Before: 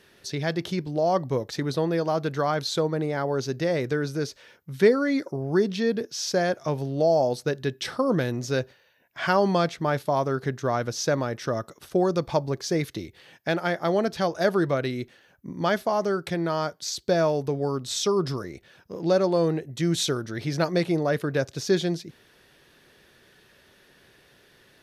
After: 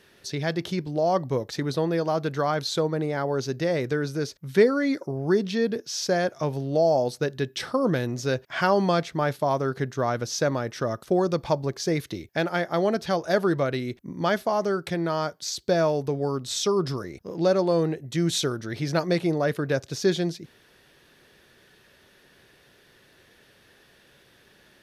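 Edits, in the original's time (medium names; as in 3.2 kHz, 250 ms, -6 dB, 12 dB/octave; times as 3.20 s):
shorten pauses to 0.12 s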